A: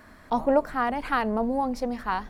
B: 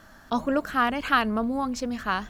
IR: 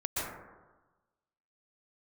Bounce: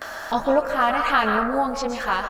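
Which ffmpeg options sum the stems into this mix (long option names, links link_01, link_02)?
-filter_complex "[0:a]volume=0.5dB,asplit=2[link_01][link_02];[1:a]highpass=frequency=440:width=0.5412,highpass=frequency=440:width=1.3066,acompressor=mode=upward:threshold=-26dB:ratio=2.5,adelay=17,volume=3dB,asplit=2[link_03][link_04];[link_04]volume=-9.5dB[link_05];[link_02]apad=whole_len=101819[link_06];[link_03][link_06]sidechaincompress=threshold=-24dB:ratio=8:attack=16:release=718[link_07];[2:a]atrim=start_sample=2205[link_08];[link_05][link_08]afir=irnorm=-1:irlink=0[link_09];[link_01][link_07][link_09]amix=inputs=3:normalize=0,acrossover=split=6100[link_10][link_11];[link_11]acompressor=threshold=-47dB:ratio=4:attack=1:release=60[link_12];[link_10][link_12]amix=inputs=2:normalize=0"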